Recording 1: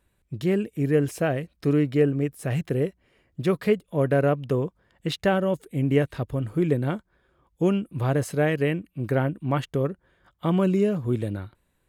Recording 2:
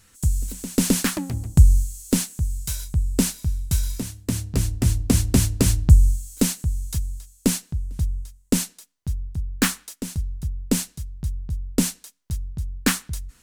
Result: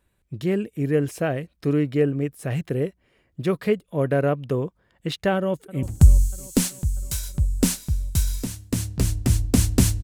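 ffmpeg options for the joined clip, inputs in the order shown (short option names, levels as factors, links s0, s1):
-filter_complex "[0:a]apad=whole_dur=10.03,atrim=end=10.03,atrim=end=5.832[s0];[1:a]atrim=start=1.388:end=5.59[s1];[s0][s1]acrossfade=d=0.004:c1=hsin:c2=hsin,asplit=2[s2][s3];[s3]afade=t=in:st=5.36:d=0.01,afade=t=out:st=5.83:d=0.01,aecho=0:1:320|640|960|1280|1600|1920|2240|2560:0.133352|0.0933465|0.0653426|0.0457398|0.0320178|0.0224125|0.0156887|0.0109821[s4];[s2][s4]amix=inputs=2:normalize=0"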